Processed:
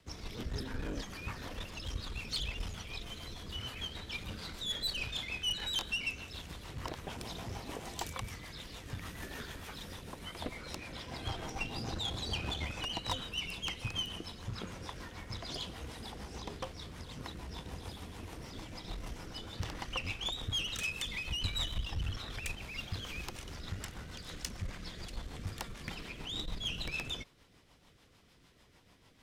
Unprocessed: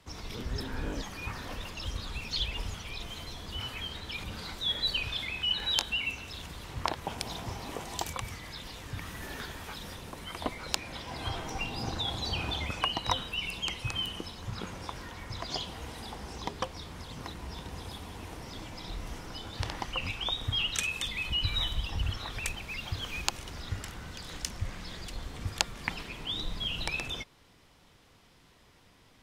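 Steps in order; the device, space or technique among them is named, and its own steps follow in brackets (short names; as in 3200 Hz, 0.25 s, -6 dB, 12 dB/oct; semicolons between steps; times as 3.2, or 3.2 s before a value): overdriven rotary cabinet (tube stage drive 28 dB, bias 0.5; rotary speaker horn 6.7 Hz); gain +1 dB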